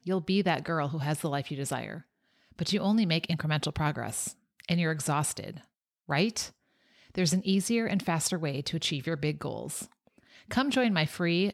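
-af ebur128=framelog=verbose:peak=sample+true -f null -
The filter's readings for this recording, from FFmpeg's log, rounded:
Integrated loudness:
  I:         -29.8 LUFS
  Threshold: -40.5 LUFS
Loudness range:
  LRA:         1.7 LU
  Threshold: -50.6 LUFS
  LRA low:   -31.5 LUFS
  LRA high:  -29.8 LUFS
Sample peak:
  Peak:      -11.9 dBFS
True peak:
  Peak:      -11.8 dBFS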